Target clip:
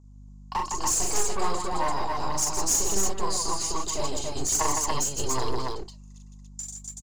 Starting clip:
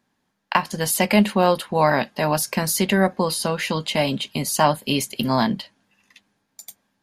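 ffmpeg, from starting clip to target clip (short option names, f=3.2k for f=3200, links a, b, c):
-filter_complex "[0:a]firequalizer=gain_entry='entry(100,0);entry(390,-12);entry(1100,-3);entry(1600,-28);entry(7000,9);entry(12000,-28)':delay=0.05:min_phase=1,acrossover=split=610[a][b];[a]aeval=exprs='abs(val(0))':c=same[c];[b]aphaser=in_gain=1:out_gain=1:delay=4.4:decay=0.63:speed=1.3:type=triangular[d];[c][d]amix=inputs=2:normalize=0,aeval=exprs='clip(val(0),-1,0.0891)':c=same,aeval=exprs='val(0)+0.00355*(sin(2*PI*50*n/s)+sin(2*PI*2*50*n/s)/2+sin(2*PI*3*50*n/s)/3+sin(2*PI*4*50*n/s)/4+sin(2*PI*5*50*n/s)/5)':c=same,aecho=1:1:40.82|160.3|285.7:0.708|0.562|0.794,volume=-2.5dB"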